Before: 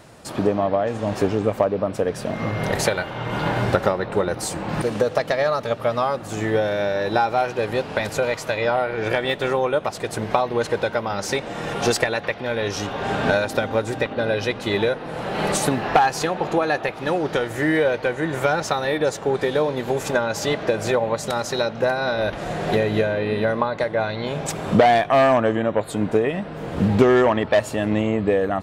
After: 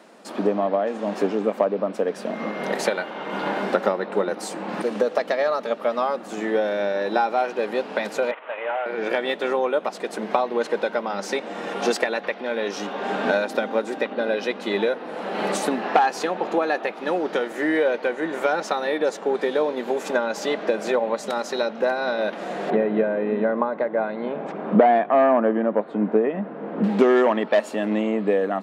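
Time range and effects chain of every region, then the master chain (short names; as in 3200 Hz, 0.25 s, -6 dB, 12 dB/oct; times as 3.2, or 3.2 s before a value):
8.31–8.86 CVSD 16 kbps + HPF 630 Hz
22.7–26.84 LPF 1700 Hz + low shelf 150 Hz +8.5 dB
whole clip: elliptic high-pass 200 Hz, stop band 50 dB; high shelf 6200 Hz -8.5 dB; gain -1 dB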